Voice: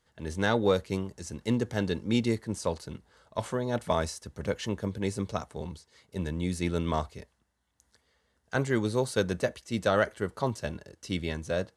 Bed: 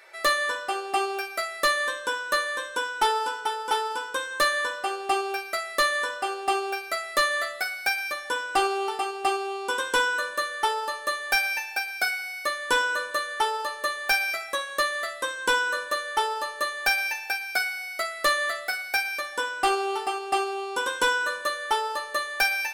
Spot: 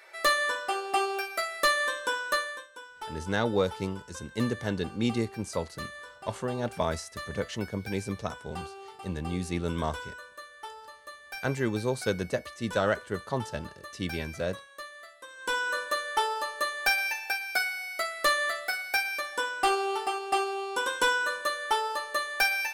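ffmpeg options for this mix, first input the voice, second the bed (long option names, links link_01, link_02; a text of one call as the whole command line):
ffmpeg -i stem1.wav -i stem2.wav -filter_complex "[0:a]adelay=2900,volume=-1.5dB[link_01];[1:a]volume=14dB,afade=type=out:start_time=2.27:duration=0.4:silence=0.158489,afade=type=in:start_time=15.28:duration=0.5:silence=0.16788[link_02];[link_01][link_02]amix=inputs=2:normalize=0" out.wav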